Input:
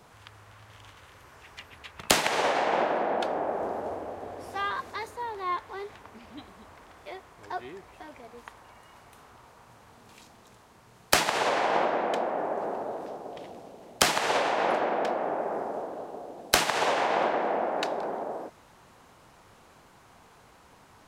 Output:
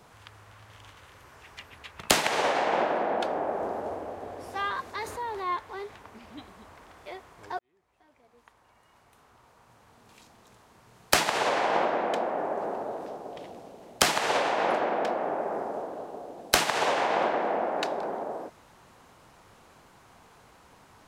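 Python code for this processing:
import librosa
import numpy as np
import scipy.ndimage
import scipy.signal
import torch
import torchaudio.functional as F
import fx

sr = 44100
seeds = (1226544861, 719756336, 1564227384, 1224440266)

y = fx.env_flatten(x, sr, amount_pct=50, at=(4.98, 5.46))
y = fx.edit(y, sr, fx.fade_in_span(start_s=7.59, length_s=3.57), tone=tone)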